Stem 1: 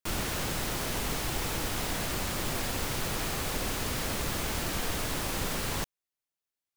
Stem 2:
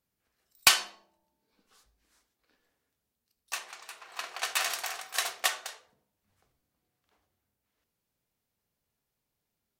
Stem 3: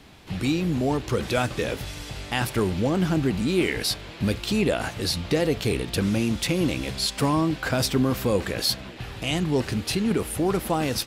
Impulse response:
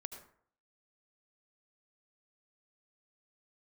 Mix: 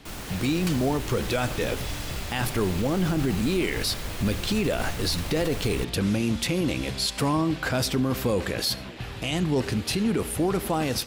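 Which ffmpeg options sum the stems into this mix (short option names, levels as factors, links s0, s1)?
-filter_complex "[0:a]asubboost=boost=2.5:cutoff=180,volume=0.531[s0];[1:a]volume=0.188[s1];[2:a]volume=0.841,asplit=2[s2][s3];[s3]volume=0.335[s4];[3:a]atrim=start_sample=2205[s5];[s4][s5]afir=irnorm=-1:irlink=0[s6];[s0][s1][s2][s6]amix=inputs=4:normalize=0,alimiter=limit=0.158:level=0:latency=1:release=26"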